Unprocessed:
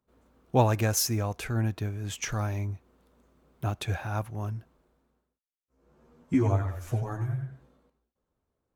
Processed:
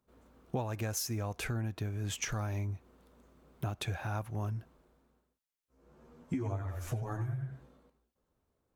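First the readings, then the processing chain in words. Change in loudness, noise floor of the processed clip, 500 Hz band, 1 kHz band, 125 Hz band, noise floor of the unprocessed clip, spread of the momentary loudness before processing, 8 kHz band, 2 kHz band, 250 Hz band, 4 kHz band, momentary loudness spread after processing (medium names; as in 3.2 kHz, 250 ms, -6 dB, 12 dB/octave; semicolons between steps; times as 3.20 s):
-7.5 dB, -83 dBFS, -10.0 dB, -9.5 dB, -7.0 dB, -84 dBFS, 11 LU, -7.0 dB, -5.0 dB, -8.5 dB, -6.0 dB, 5 LU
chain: compression 8:1, threshold -34 dBFS, peak gain reduction 17.5 dB; trim +1.5 dB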